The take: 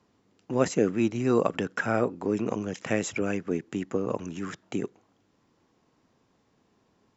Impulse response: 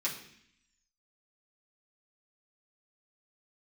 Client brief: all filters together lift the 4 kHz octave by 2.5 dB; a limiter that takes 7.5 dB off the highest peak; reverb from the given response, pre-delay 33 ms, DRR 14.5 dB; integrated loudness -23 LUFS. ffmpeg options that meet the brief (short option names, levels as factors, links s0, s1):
-filter_complex "[0:a]equalizer=f=4000:t=o:g=3.5,alimiter=limit=0.15:level=0:latency=1,asplit=2[s0][s1];[1:a]atrim=start_sample=2205,adelay=33[s2];[s1][s2]afir=irnorm=-1:irlink=0,volume=0.112[s3];[s0][s3]amix=inputs=2:normalize=0,volume=2.37"